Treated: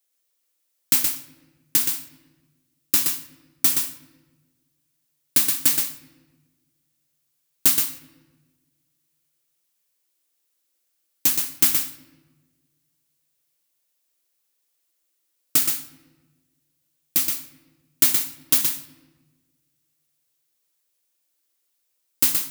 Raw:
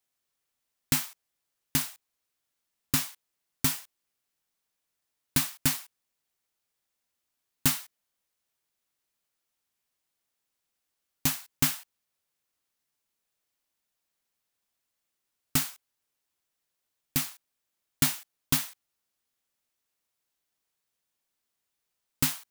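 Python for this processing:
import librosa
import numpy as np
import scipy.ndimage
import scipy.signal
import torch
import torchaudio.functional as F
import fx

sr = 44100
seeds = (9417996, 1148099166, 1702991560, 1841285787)

p1 = fx.tilt_eq(x, sr, slope=3.0)
p2 = fx.small_body(p1, sr, hz=(330.0, 510.0), ring_ms=95, db=16)
p3 = p2 + fx.echo_single(p2, sr, ms=122, db=-5.0, dry=0)
p4 = fx.room_shoebox(p3, sr, seeds[0], volume_m3=900.0, walls='mixed', distance_m=0.4)
y = F.gain(torch.from_numpy(p4), -2.0).numpy()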